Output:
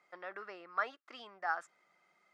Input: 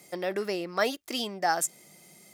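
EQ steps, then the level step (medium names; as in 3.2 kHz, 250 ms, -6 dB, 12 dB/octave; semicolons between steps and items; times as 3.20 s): band-pass filter 1.3 kHz, Q 3.4; distance through air 69 m; 0.0 dB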